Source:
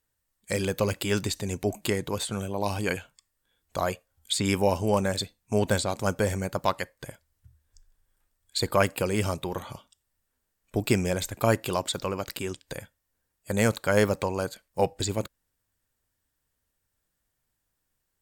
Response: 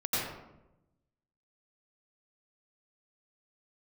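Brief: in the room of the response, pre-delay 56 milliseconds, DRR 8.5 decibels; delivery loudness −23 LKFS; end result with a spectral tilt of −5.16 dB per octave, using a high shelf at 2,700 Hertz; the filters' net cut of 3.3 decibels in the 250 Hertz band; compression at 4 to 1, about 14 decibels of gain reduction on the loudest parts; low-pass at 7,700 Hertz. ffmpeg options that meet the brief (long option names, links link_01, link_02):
-filter_complex "[0:a]lowpass=7700,equalizer=frequency=250:width_type=o:gain=-4.5,highshelf=frequency=2700:gain=-5,acompressor=threshold=-36dB:ratio=4,asplit=2[link_01][link_02];[1:a]atrim=start_sample=2205,adelay=56[link_03];[link_02][link_03]afir=irnorm=-1:irlink=0,volume=-17dB[link_04];[link_01][link_04]amix=inputs=2:normalize=0,volume=16.5dB"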